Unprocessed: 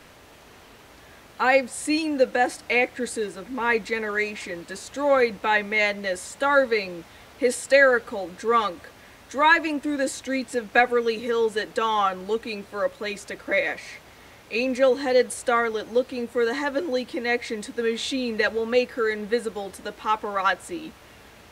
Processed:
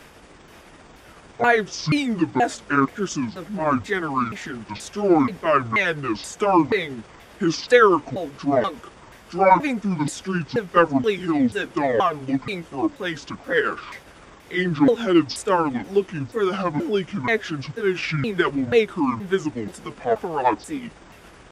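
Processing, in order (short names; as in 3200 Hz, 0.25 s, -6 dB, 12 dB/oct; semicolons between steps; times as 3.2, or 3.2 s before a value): repeated pitch sweeps -12 st, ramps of 0.48 s; notch 4100 Hz, Q 14; gain +3.5 dB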